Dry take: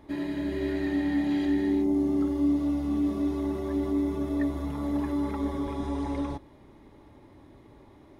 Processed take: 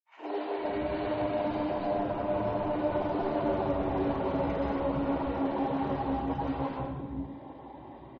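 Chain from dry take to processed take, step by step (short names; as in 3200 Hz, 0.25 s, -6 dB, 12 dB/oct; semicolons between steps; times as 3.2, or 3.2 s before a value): one-sided fold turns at -30 dBFS; Doppler pass-by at 3.45, 15 m/s, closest 12 m; compressor 2:1, threshold -48 dBFS, peak gain reduction 12.5 dB; overdrive pedal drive 26 dB, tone 2000 Hz, clips at -32 dBFS; AGC gain up to 3.5 dB; grains 0.1 s, grains 20/s, spray 0.448 s, pitch spread up and down by 0 st; de-hum 173.6 Hz, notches 29; reverb removal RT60 1.9 s; three bands offset in time highs, mids, lows 0.11/0.5 s, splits 330/1400 Hz; reverb RT60 1.1 s, pre-delay 0.112 s, DRR -1.5 dB; gain -5.5 dB; MP3 32 kbps 44100 Hz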